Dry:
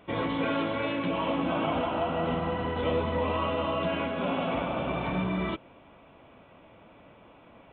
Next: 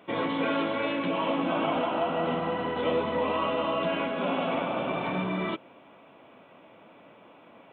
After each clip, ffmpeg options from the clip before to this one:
-af "highpass=190,volume=1.19"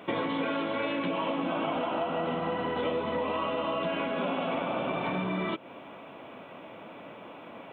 -af "acompressor=threshold=0.0158:ratio=5,volume=2.37"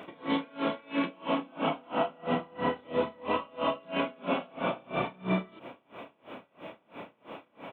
-filter_complex "[0:a]asplit=2[s0][s1];[s1]adelay=32,volume=0.708[s2];[s0][s2]amix=inputs=2:normalize=0,aeval=exprs='val(0)*pow(10,-30*(0.5-0.5*cos(2*PI*3*n/s))/20)':c=same,volume=1.41"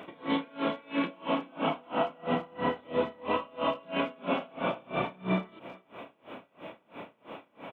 -filter_complex "[0:a]asplit=2[s0][s1];[s1]adelay=390,highpass=300,lowpass=3400,asoftclip=type=hard:threshold=0.0596,volume=0.112[s2];[s0][s2]amix=inputs=2:normalize=0"

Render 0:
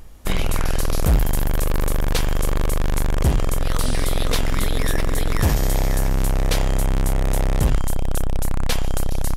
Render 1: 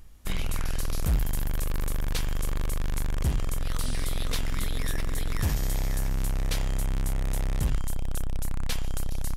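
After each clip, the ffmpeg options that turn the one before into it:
-af "equalizer=f=560:w=0.64:g=-6.5,volume=0.422"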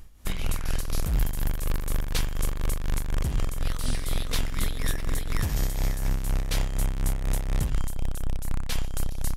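-af "tremolo=f=4.1:d=0.57,volume=1.5"

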